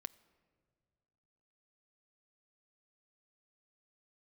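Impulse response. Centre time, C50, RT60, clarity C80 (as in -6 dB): 3 ms, 20.0 dB, 2.0 s, 21.0 dB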